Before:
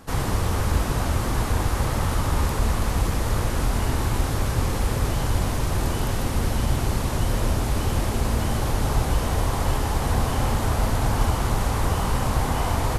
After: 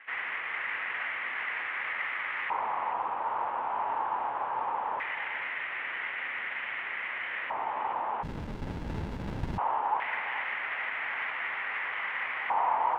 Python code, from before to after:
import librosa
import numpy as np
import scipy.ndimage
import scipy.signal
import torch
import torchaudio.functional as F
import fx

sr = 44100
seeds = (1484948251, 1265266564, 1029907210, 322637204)

p1 = fx.cvsd(x, sr, bps=16000)
p2 = fx.highpass(p1, sr, hz=650.0, slope=6)
p3 = np.clip(p2, -10.0 ** (-31.0 / 20.0), 10.0 ** (-31.0 / 20.0))
p4 = p2 + (p3 * 10.0 ** (-10.0 / 20.0))
p5 = fx.filter_lfo_bandpass(p4, sr, shape='square', hz=0.2, low_hz=910.0, high_hz=2000.0, q=5.0)
p6 = p5 + 10.0 ** (-11.5 / 20.0) * np.pad(p5, (int(430 * sr / 1000.0), 0))[:len(p5)]
p7 = fx.running_max(p6, sr, window=65, at=(8.22, 9.57), fade=0.02)
y = p7 * 10.0 ** (7.5 / 20.0)